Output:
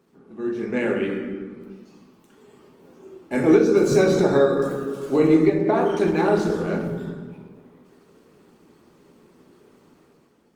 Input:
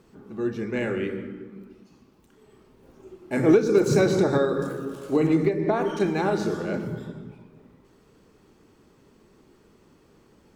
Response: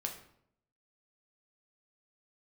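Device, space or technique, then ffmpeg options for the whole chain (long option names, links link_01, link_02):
far-field microphone of a smart speaker: -filter_complex "[1:a]atrim=start_sample=2205[link_01];[0:a][link_01]afir=irnorm=-1:irlink=0,highpass=150,dynaudnorm=framelen=140:gausssize=9:maxgain=8dB,volume=-3dB" -ar 48000 -c:a libopus -b:a 24k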